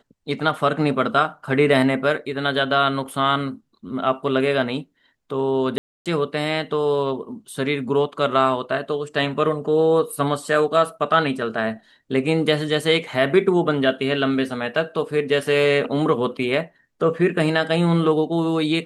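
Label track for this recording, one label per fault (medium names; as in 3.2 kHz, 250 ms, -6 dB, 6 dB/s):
5.780000	6.060000	dropout 277 ms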